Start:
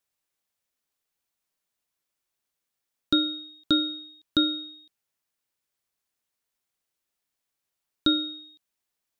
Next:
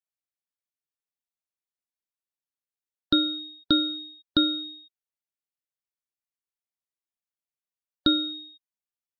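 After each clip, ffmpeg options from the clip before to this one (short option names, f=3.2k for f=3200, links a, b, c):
-filter_complex "[0:a]asplit=2[a][b];[b]acompressor=threshold=-29dB:ratio=6,volume=-3dB[c];[a][c]amix=inputs=2:normalize=0,afftdn=nr=20:nf=-41,volume=-1dB"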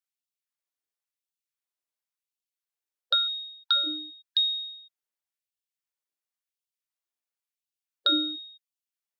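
-af "afftfilt=real='re*gte(b*sr/1024,230*pow(2600/230,0.5+0.5*sin(2*PI*0.94*pts/sr)))':imag='im*gte(b*sr/1024,230*pow(2600/230,0.5+0.5*sin(2*PI*0.94*pts/sr)))':win_size=1024:overlap=0.75,volume=1dB"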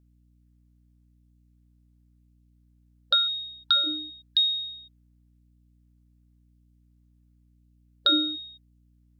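-af "aeval=exprs='val(0)+0.000794*(sin(2*PI*60*n/s)+sin(2*PI*2*60*n/s)/2+sin(2*PI*3*60*n/s)/3+sin(2*PI*4*60*n/s)/4+sin(2*PI*5*60*n/s)/5)':c=same,volume=2dB"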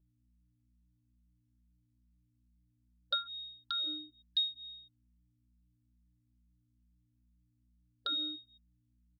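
-filter_complex "[0:a]asplit=2[a][b];[b]adelay=2.9,afreqshift=-2.3[c];[a][c]amix=inputs=2:normalize=1,volume=-8dB"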